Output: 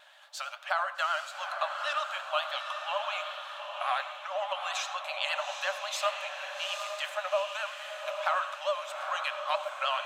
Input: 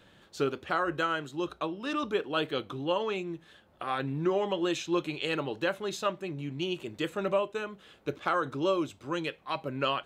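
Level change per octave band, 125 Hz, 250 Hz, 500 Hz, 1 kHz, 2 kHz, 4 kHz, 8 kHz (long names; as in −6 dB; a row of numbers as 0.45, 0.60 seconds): below −40 dB, below −40 dB, −4.5 dB, +2.5 dB, +2.5 dB, +3.0 dB, +4.5 dB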